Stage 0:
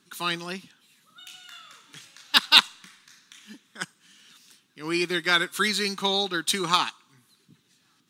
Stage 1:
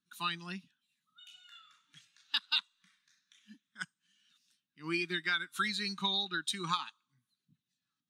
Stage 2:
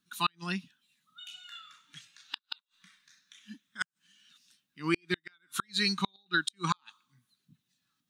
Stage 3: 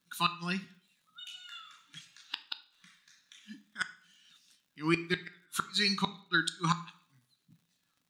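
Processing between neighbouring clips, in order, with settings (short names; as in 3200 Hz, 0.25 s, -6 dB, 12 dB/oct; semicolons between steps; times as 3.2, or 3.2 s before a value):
bell 470 Hz -11 dB 1.3 oct; compressor 4:1, threshold -28 dBFS, peak gain reduction 16 dB; spectral expander 1.5:1; gain -3.5 dB
flipped gate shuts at -23 dBFS, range -41 dB; gain +8.5 dB
on a send at -10 dB: reverb RT60 0.55 s, pre-delay 3 ms; on the sum: crackle 110/s -60 dBFS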